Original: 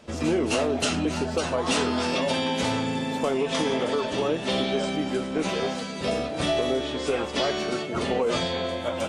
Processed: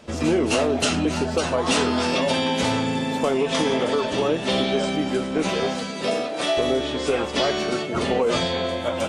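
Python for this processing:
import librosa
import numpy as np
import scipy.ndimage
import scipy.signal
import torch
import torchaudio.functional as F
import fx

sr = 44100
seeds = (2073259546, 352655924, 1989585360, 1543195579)

y = fx.highpass(x, sr, hz=fx.line((5.91, 160.0), (6.56, 440.0)), slope=12, at=(5.91, 6.56), fade=0.02)
y = y * 10.0 ** (3.5 / 20.0)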